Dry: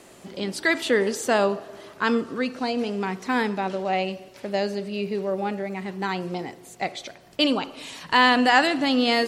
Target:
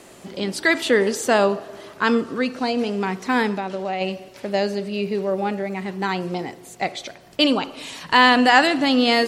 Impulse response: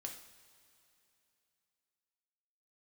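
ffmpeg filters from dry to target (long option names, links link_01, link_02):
-filter_complex "[0:a]asplit=3[link_01][link_02][link_03];[link_01]afade=type=out:start_time=3.57:duration=0.02[link_04];[link_02]acompressor=threshold=-26dB:ratio=6,afade=type=in:start_time=3.57:duration=0.02,afade=type=out:start_time=4:duration=0.02[link_05];[link_03]afade=type=in:start_time=4:duration=0.02[link_06];[link_04][link_05][link_06]amix=inputs=3:normalize=0,volume=3.5dB"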